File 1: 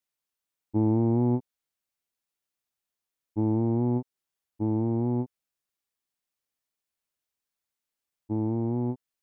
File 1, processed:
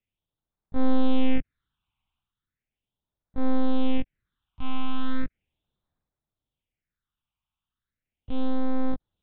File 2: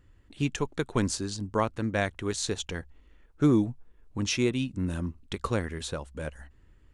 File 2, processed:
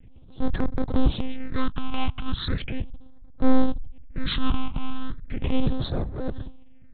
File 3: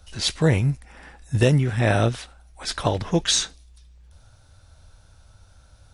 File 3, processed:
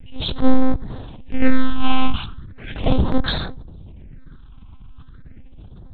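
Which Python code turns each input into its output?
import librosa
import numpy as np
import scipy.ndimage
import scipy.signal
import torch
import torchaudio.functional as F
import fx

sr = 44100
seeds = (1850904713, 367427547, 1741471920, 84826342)

y = fx.halfwave_hold(x, sr)
y = fx.lpc_monotone(y, sr, seeds[0], pitch_hz=260.0, order=10)
y = fx.phaser_stages(y, sr, stages=6, low_hz=470.0, high_hz=2700.0, hz=0.37, feedback_pct=30)
y = fx.transient(y, sr, attack_db=-5, sustain_db=7)
y = fx.low_shelf(y, sr, hz=290.0, db=5.5)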